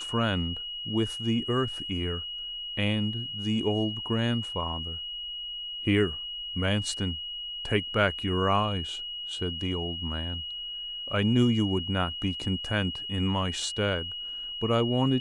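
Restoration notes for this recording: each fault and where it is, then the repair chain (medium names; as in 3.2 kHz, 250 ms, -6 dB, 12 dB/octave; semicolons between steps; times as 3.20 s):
whine 2.9 kHz -34 dBFS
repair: band-stop 2.9 kHz, Q 30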